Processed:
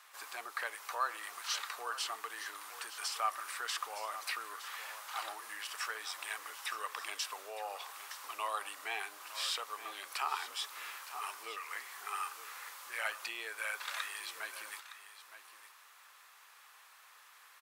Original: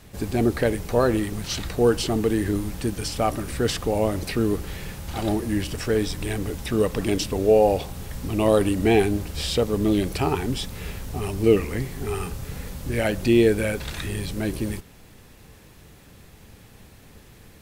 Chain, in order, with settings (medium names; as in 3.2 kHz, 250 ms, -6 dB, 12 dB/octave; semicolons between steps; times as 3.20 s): compression 2:1, threshold -25 dBFS, peak gain reduction 8 dB; ladder high-pass 990 Hz, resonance 55%; delay 914 ms -13 dB; trim +3.5 dB